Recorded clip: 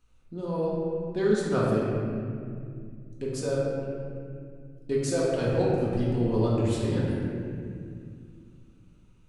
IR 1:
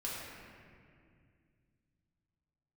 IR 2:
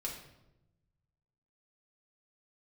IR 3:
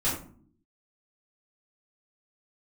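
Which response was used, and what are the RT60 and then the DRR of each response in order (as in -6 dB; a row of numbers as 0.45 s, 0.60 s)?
1; 2.2 s, 0.90 s, no single decay rate; -6.5 dB, -3.0 dB, -10.5 dB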